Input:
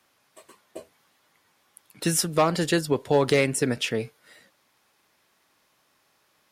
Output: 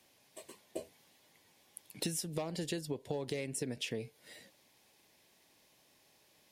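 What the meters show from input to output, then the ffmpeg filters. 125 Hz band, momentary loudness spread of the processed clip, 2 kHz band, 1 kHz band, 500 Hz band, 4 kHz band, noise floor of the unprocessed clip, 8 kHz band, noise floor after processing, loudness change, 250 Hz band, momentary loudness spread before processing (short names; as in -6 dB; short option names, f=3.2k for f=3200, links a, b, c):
-13.5 dB, 18 LU, -17.5 dB, -21.0 dB, -16.0 dB, -12.0 dB, -68 dBFS, -12.5 dB, -69 dBFS, -15.5 dB, -14.0 dB, 8 LU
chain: -af "equalizer=f=1.3k:t=o:w=0.66:g=-14.5,acompressor=threshold=-35dB:ratio=16,volume=1dB"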